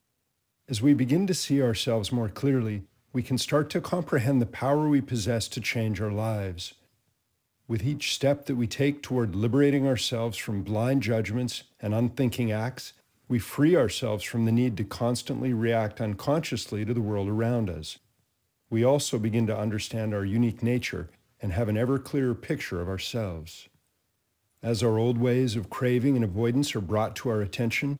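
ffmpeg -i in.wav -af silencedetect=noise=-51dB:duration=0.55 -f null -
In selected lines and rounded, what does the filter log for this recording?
silence_start: 0.00
silence_end: 0.68 | silence_duration: 0.68
silence_start: 6.74
silence_end: 7.69 | silence_duration: 0.94
silence_start: 17.98
silence_end: 18.71 | silence_duration: 0.73
silence_start: 23.67
silence_end: 24.63 | silence_duration: 0.96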